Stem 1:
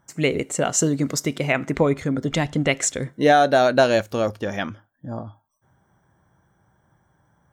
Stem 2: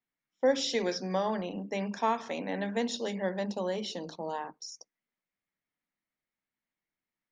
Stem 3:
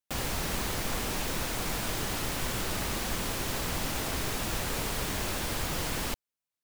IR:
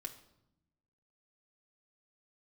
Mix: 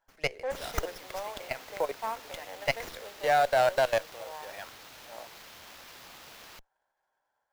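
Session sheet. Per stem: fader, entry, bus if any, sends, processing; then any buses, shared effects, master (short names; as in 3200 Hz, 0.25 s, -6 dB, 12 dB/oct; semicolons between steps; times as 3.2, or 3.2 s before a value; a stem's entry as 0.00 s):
-3.0 dB, 0.00 s, no send, notch 1200 Hz, Q 6.5; level quantiser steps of 18 dB
-5.0 dB, 0.00 s, no send, Wiener smoothing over 25 samples
-17.0 dB, 0.45 s, no send, high shelf 6800 Hz +11.5 dB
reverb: off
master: HPF 540 Hz 24 dB/oct; running maximum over 5 samples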